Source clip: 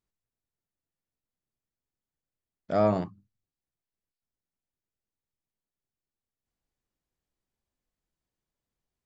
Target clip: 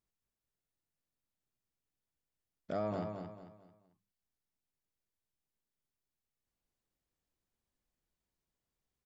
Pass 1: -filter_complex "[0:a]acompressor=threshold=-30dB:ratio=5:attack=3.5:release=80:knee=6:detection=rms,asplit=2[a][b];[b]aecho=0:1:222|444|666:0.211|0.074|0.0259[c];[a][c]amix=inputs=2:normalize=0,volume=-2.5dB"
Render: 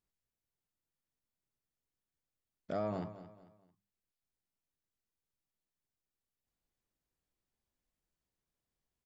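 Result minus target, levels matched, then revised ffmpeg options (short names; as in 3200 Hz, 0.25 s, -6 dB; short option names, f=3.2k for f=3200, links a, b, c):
echo-to-direct -7.5 dB
-filter_complex "[0:a]acompressor=threshold=-30dB:ratio=5:attack=3.5:release=80:knee=6:detection=rms,asplit=2[a][b];[b]aecho=0:1:222|444|666|888:0.501|0.175|0.0614|0.0215[c];[a][c]amix=inputs=2:normalize=0,volume=-2.5dB"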